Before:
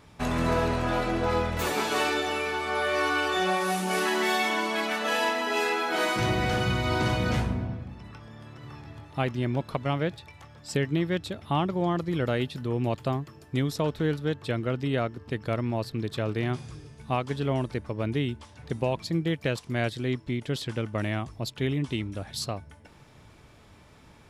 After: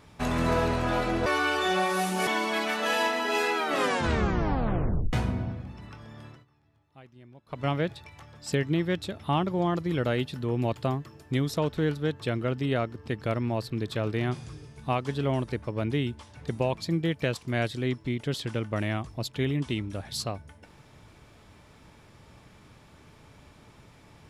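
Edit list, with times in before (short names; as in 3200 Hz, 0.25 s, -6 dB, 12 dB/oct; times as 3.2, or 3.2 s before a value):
1.26–2.97 cut
3.98–4.49 cut
5.77 tape stop 1.58 s
8.49–9.87 dip -23.5 dB, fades 0.18 s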